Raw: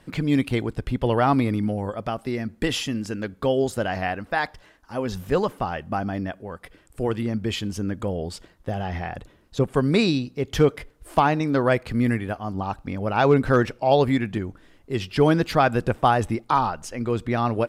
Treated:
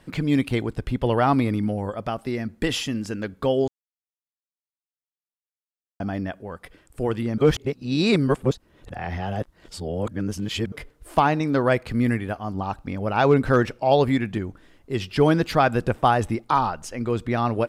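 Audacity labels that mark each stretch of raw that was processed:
3.680000	6.000000	mute
7.380000	10.720000	reverse

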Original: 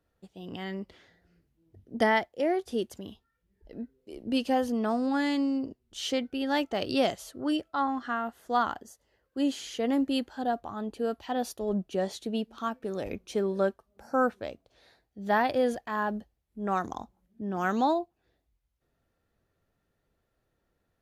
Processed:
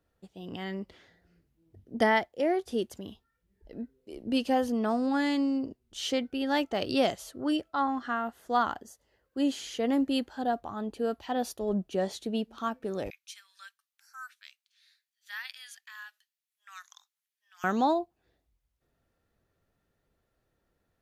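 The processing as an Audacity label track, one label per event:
13.100000	17.640000	Bessel high-pass 2600 Hz, order 6

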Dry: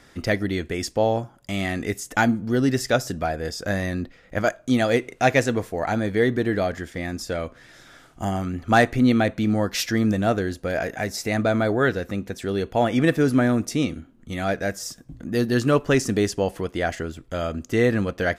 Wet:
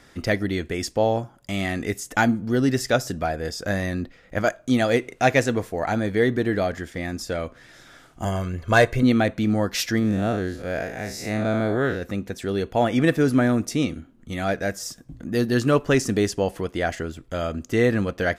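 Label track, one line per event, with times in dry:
8.250000	9.030000	comb 1.9 ms
9.990000	12.020000	time blur width 0.11 s

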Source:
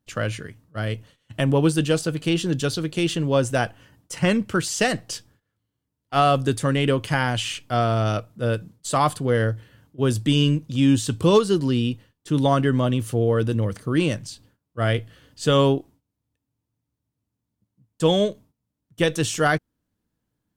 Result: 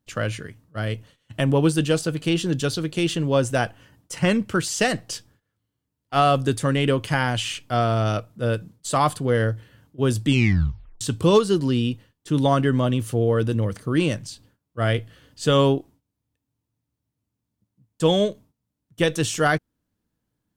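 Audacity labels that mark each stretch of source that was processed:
10.280000	10.280000	tape stop 0.73 s

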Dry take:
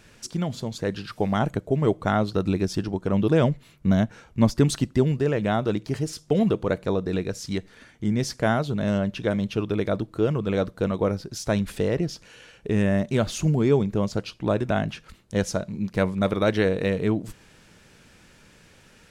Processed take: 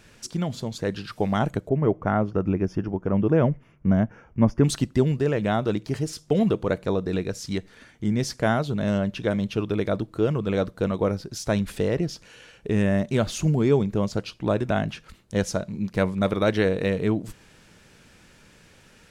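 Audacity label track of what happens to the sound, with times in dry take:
1.690000	4.640000	running mean over 11 samples

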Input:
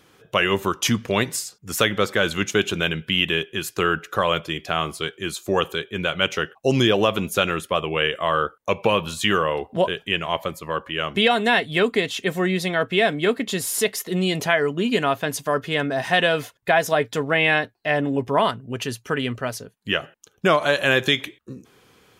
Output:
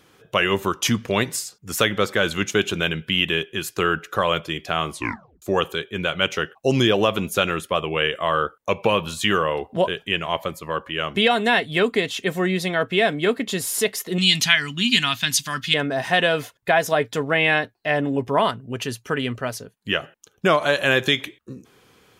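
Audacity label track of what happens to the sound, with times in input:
4.920000	4.920000	tape stop 0.50 s
14.180000	15.740000	EQ curve 240 Hz 0 dB, 480 Hz -23 dB, 820 Hz -8 dB, 3700 Hz +14 dB, 6300 Hz +11 dB, 11000 Hz +5 dB

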